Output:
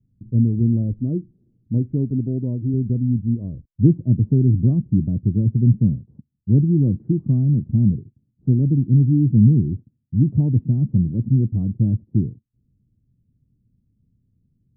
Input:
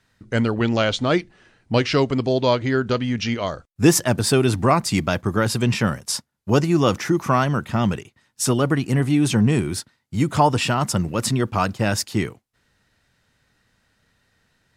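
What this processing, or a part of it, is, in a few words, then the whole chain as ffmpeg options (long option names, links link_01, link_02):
the neighbour's flat through the wall: -filter_complex "[0:a]lowpass=frequency=270:width=0.5412,lowpass=frequency=270:width=1.3066,equalizer=frequency=120:width_type=o:width=0.82:gain=4.5,asettb=1/sr,asplit=3[link_01][link_02][link_03];[link_01]atrim=end=0.994[link_04];[link_02]atrim=start=0.99:end=2.74,asetpts=PTS-STARTPTS,afade=type=in:duration=0.004:curve=qsin,afade=type=out:start_time=1.746:duration=0.004:curve=qsin,lowshelf=frequency=90:gain=-11[link_05];[link_03]atrim=start=2.736[link_06];[link_04][link_05]acrossfade=duration=0.004:curve1=hsin:curve2=qsin[link_07];[link_07][link_06]acrossfade=duration=0.004:curve1=qsin:curve2=hsin,volume=3dB"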